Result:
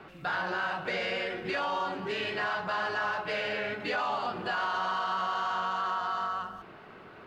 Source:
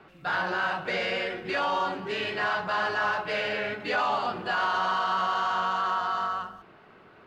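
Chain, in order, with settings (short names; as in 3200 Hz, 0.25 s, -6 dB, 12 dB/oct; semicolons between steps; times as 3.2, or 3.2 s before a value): compressor 2:1, threshold -39 dBFS, peak gain reduction 9 dB; gain +4 dB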